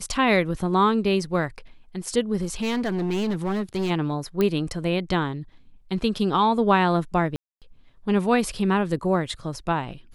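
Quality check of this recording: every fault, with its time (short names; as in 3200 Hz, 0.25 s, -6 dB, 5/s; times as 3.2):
2.41–3.91 clipped -21.5 dBFS
4.41 pop -11 dBFS
7.36–7.62 gap 0.257 s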